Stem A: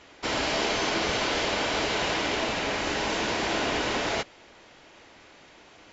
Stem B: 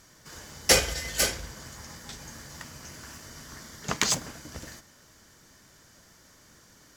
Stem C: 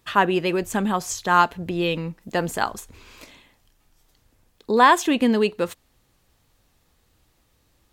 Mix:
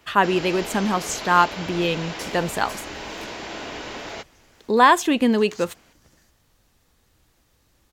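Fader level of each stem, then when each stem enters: -6.5, -17.0, +0.5 dB; 0.00, 1.50, 0.00 s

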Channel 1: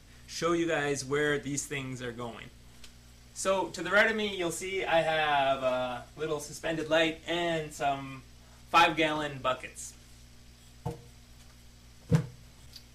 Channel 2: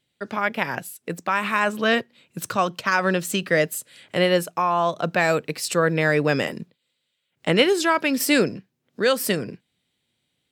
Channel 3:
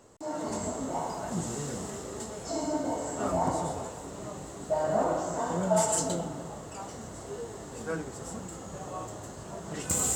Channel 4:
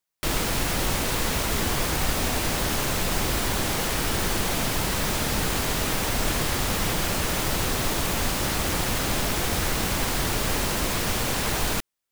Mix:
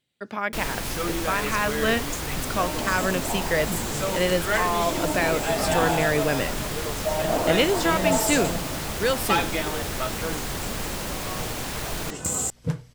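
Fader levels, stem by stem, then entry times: -1.5, -4.0, +1.5, -5.5 dB; 0.55, 0.00, 2.35, 0.30 s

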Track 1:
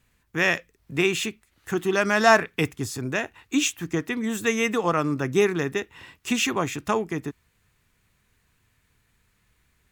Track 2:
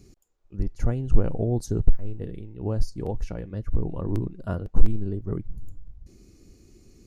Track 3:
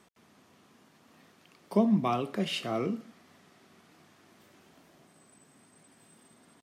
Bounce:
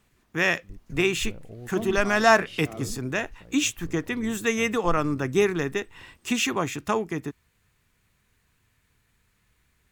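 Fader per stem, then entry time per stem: -1.0, -17.0, -9.0 dB; 0.00, 0.10, 0.00 s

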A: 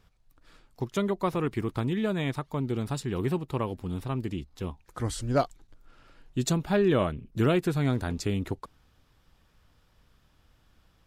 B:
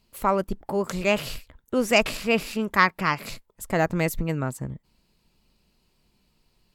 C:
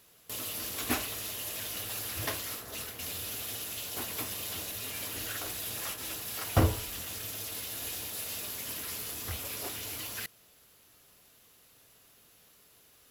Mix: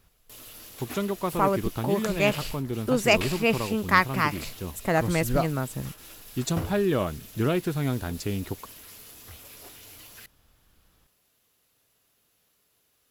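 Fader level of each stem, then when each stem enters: -1.0, -1.0, -8.5 dB; 0.00, 1.15, 0.00 s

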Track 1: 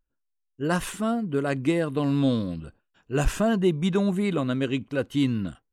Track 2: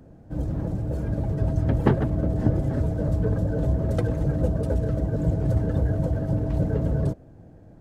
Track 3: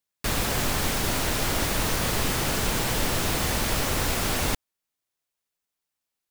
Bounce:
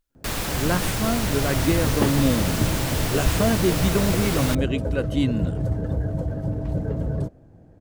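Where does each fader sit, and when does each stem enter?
+0.5, -2.0, -1.5 dB; 0.00, 0.15, 0.00 s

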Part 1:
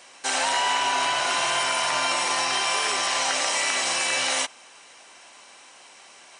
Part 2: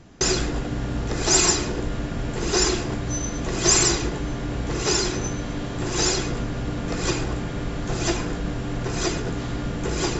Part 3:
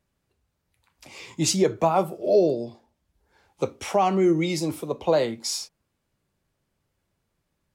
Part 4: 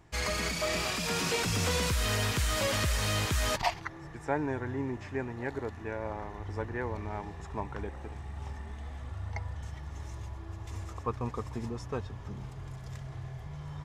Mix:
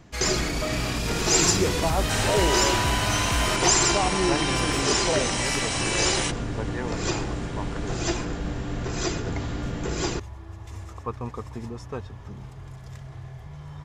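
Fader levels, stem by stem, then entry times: -3.5, -3.0, -6.0, +1.5 dB; 1.85, 0.00, 0.00, 0.00 s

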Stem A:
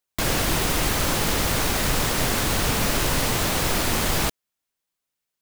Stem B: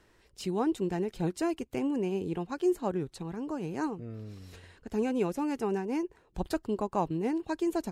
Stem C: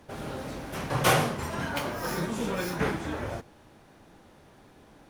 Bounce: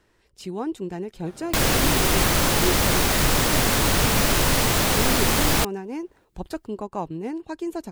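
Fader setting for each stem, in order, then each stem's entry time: +2.5, 0.0, -10.5 dB; 1.35, 0.00, 1.15 s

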